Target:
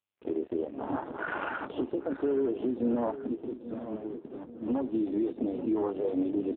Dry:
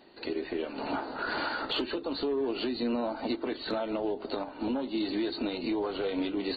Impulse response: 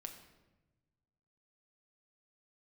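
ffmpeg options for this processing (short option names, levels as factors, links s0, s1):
-filter_complex "[0:a]bandreject=f=2100:w=19,afwtdn=0.0251,asettb=1/sr,asplit=3[s0][s1][s2];[s0]atrim=end=3.114[s3];[s1]atrim=start=3.11:end=4.68,asetpts=PTS-STARTPTS,afade=t=in:d=0.004:c=qsin,afade=t=out:st=1.566:d=0.004:c=qsin,acrossover=split=290|3000[s4][s5][s6];[s5]acompressor=threshold=0.00126:ratio=2[s7];[s4][s7][s6]amix=inputs=3:normalize=0[s8];[s2]atrim=start=4.676[s9];[s3][s8]acrossfade=d=0.004:c1=hsin:c2=qsin[s10];[s10][s9]acrossfade=d=0.004:c1=qsin:c2=hsin,aeval=exprs='sgn(val(0))*max(abs(val(0))-0.00178,0)':c=same,asplit=2[s11][s12];[s12]adelay=834,lowpass=f=2000:p=1,volume=0.251,asplit=2[s13][s14];[s14]adelay=834,lowpass=f=2000:p=1,volume=0.5,asplit=2[s15][s16];[s16]adelay=834,lowpass=f=2000:p=1,volume=0.5,asplit=2[s17][s18];[s18]adelay=834,lowpass=f=2000:p=1,volume=0.5,asplit=2[s19][s20];[s20]adelay=834,lowpass=f=2000:p=1,volume=0.5[s21];[s11][s13][s15][s17][s19][s21]amix=inputs=6:normalize=0,volume=1.41" -ar 8000 -c:a libopencore_amrnb -b:a 5900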